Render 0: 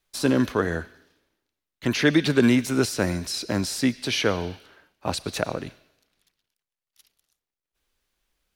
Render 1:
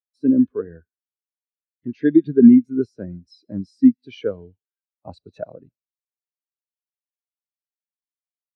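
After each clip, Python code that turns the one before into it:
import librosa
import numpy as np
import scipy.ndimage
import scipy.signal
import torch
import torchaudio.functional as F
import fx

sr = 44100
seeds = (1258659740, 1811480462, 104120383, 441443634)

y = fx.rider(x, sr, range_db=10, speed_s=2.0)
y = fx.spectral_expand(y, sr, expansion=2.5)
y = y * librosa.db_to_amplitude(3.0)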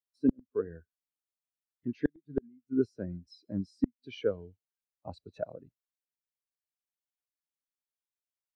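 y = fx.low_shelf(x, sr, hz=240.0, db=-7.0)
y = fx.gate_flip(y, sr, shuts_db=-11.0, range_db=-41)
y = fx.low_shelf(y, sr, hz=110.0, db=11.0)
y = y * librosa.db_to_amplitude(-4.5)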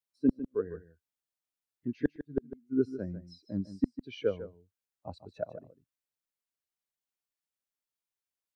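y = x + 10.0 ** (-13.0 / 20.0) * np.pad(x, (int(151 * sr / 1000.0), 0))[:len(x)]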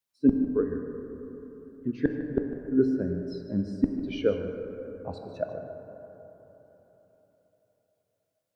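y = fx.rev_plate(x, sr, seeds[0], rt60_s=4.0, hf_ratio=0.3, predelay_ms=0, drr_db=5.0)
y = y * librosa.db_to_amplitude(4.5)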